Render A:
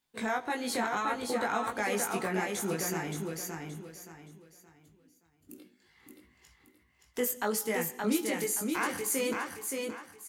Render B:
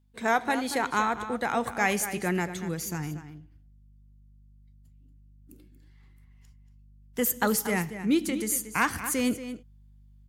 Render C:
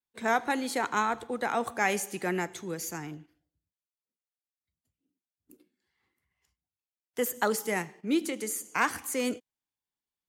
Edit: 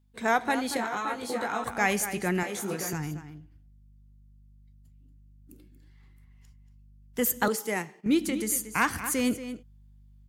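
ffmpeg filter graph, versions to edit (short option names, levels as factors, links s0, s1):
-filter_complex "[0:a]asplit=2[s0][s1];[1:a]asplit=4[s2][s3][s4][s5];[s2]atrim=end=0.772[s6];[s0]atrim=start=0.768:end=1.642[s7];[s3]atrim=start=1.638:end=2.432[s8];[s1]atrim=start=2.428:end=2.932[s9];[s4]atrim=start=2.928:end=7.482[s10];[2:a]atrim=start=7.478:end=8.062[s11];[s5]atrim=start=8.058[s12];[s6][s7]acrossfade=d=0.004:c1=hsin:c2=hsin[s13];[s13][s8]acrossfade=d=0.004:c1=hsin:c2=hsin[s14];[s14][s9]acrossfade=d=0.004:c1=hsin:c2=hsin[s15];[s15][s10]acrossfade=d=0.004:c1=hsin:c2=hsin[s16];[s16][s11]acrossfade=d=0.004:c1=hsin:c2=hsin[s17];[s17][s12]acrossfade=d=0.004:c1=hsin:c2=hsin"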